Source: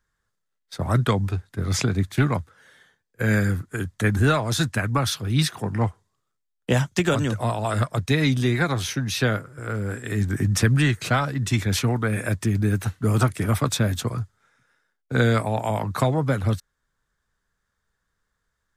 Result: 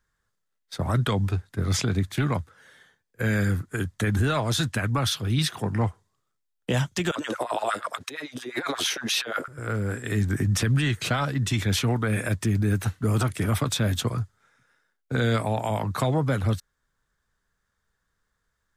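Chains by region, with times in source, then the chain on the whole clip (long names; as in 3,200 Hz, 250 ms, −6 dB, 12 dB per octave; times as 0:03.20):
0:07.11–0:09.48: compressor whose output falls as the input rises −26 dBFS, ratio −0.5 + auto-filter high-pass sine 8.6 Hz 290–1,600 Hz
whole clip: dynamic equaliser 3,200 Hz, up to +5 dB, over −44 dBFS, Q 2.8; brickwall limiter −15.5 dBFS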